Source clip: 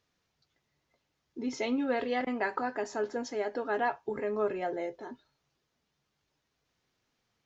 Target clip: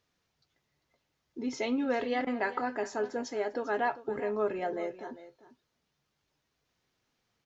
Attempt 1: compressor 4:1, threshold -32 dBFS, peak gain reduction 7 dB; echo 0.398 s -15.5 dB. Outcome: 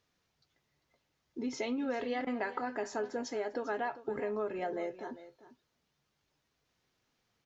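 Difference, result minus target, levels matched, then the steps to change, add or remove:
compressor: peak gain reduction +7 dB
remove: compressor 4:1, threshold -32 dBFS, peak gain reduction 7 dB

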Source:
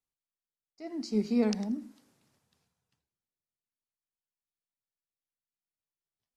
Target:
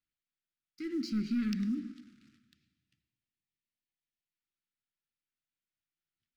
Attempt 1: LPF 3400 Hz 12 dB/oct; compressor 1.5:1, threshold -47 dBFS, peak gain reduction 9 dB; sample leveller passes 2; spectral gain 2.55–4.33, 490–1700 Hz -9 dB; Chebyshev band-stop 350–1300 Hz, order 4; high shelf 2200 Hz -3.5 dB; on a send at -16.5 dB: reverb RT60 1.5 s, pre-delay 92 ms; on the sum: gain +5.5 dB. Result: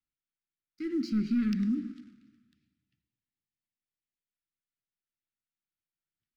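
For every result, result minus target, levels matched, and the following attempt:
4000 Hz band -5.5 dB; compressor: peak gain reduction -4 dB
LPF 3400 Hz 12 dB/oct; compressor 1.5:1, threshold -47 dBFS, peak gain reduction 9 dB; sample leveller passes 2; spectral gain 2.55–4.33, 490–1700 Hz -9 dB; Chebyshev band-stop 350–1300 Hz, order 4; high shelf 2200 Hz +3.5 dB; on a send at -16.5 dB: reverb RT60 1.5 s, pre-delay 92 ms; on the sum: gain +5.5 dB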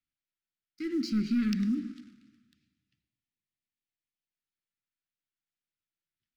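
compressor: peak gain reduction -4 dB
LPF 3400 Hz 12 dB/oct; compressor 1.5:1, threshold -59 dBFS, peak gain reduction 13 dB; sample leveller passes 2; spectral gain 2.55–4.33, 490–1700 Hz -9 dB; Chebyshev band-stop 350–1300 Hz, order 4; high shelf 2200 Hz +3.5 dB; on a send at -16.5 dB: reverb RT60 1.5 s, pre-delay 92 ms; on the sum: gain +5.5 dB

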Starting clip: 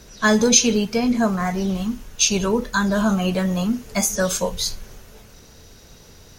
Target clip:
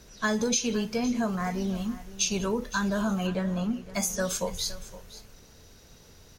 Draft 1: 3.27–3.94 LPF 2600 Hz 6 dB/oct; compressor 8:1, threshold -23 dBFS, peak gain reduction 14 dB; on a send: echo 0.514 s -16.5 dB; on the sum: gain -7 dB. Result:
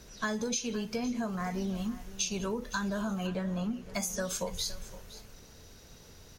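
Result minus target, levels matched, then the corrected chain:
compressor: peak gain reduction +6.5 dB
3.27–3.94 LPF 2600 Hz 6 dB/oct; compressor 8:1, threshold -15.5 dBFS, peak gain reduction 7 dB; on a send: echo 0.514 s -16.5 dB; on the sum: gain -7 dB

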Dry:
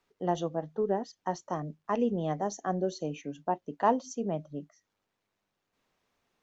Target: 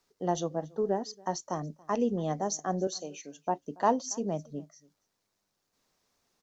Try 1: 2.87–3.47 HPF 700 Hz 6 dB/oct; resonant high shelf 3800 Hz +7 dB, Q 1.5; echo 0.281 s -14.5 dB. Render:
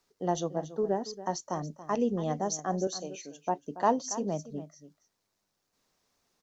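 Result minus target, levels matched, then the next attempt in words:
echo-to-direct +10.5 dB
2.87–3.47 HPF 700 Hz 6 dB/oct; resonant high shelf 3800 Hz +7 dB, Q 1.5; echo 0.281 s -25 dB

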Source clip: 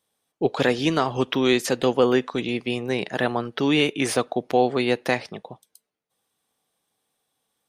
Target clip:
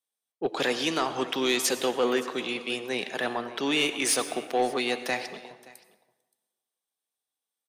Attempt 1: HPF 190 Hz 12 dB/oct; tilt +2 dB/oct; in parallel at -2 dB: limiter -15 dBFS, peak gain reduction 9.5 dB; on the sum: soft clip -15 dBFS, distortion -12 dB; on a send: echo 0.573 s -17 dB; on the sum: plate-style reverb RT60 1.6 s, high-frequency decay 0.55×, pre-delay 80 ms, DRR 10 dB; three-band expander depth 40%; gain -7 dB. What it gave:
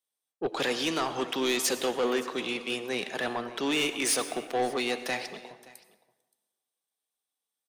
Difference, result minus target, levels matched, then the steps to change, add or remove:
soft clip: distortion +7 dB
change: soft clip -9 dBFS, distortion -19 dB

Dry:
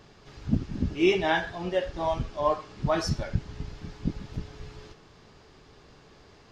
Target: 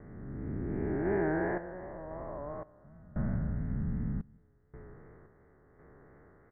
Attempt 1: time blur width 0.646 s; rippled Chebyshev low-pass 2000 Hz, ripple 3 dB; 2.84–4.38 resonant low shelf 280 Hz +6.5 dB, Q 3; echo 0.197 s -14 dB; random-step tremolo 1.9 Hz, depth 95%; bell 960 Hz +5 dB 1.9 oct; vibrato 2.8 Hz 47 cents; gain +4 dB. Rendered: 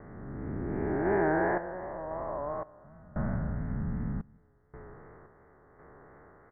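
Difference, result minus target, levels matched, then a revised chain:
1000 Hz band +5.0 dB
time blur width 0.646 s; rippled Chebyshev low-pass 2000 Hz, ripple 3 dB; 2.84–4.38 resonant low shelf 280 Hz +6.5 dB, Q 3; echo 0.197 s -14 dB; random-step tremolo 1.9 Hz, depth 95%; bell 960 Hz -3.5 dB 1.9 oct; vibrato 2.8 Hz 47 cents; gain +4 dB

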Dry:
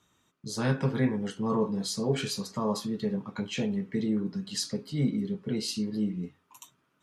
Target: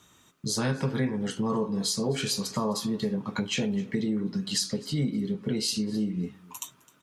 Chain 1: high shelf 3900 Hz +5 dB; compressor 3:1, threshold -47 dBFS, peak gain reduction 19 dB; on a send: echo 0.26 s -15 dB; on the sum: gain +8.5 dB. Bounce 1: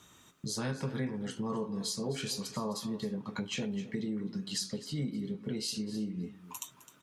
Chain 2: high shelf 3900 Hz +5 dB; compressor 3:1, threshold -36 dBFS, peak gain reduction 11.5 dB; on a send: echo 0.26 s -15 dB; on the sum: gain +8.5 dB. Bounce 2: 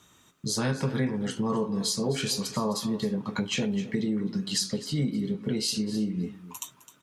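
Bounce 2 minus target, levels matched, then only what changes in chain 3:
echo-to-direct +7 dB
change: echo 0.26 s -22 dB

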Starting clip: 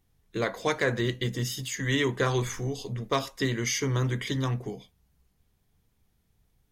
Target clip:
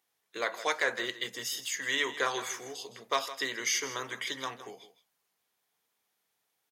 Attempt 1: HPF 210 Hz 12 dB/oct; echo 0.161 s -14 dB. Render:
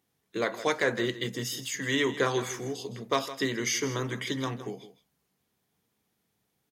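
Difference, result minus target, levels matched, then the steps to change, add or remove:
250 Hz band +11.0 dB
change: HPF 660 Hz 12 dB/oct

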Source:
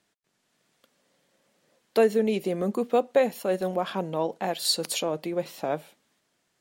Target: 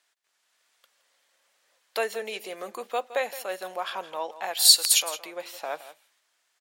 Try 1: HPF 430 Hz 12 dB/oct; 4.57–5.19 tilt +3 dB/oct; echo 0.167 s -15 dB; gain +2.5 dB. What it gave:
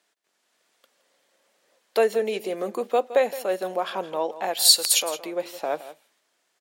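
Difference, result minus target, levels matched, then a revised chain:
500 Hz band +7.5 dB
HPF 930 Hz 12 dB/oct; 4.57–5.19 tilt +3 dB/oct; echo 0.167 s -15 dB; gain +2.5 dB

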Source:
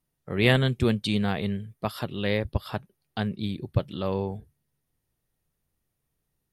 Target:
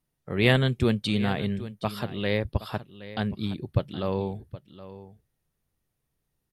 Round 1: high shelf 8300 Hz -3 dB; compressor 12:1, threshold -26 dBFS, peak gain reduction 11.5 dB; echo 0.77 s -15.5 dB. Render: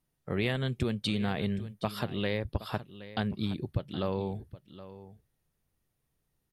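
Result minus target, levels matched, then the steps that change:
compressor: peak gain reduction +11.5 dB
remove: compressor 12:1, threshold -26 dBFS, peak gain reduction 11.5 dB

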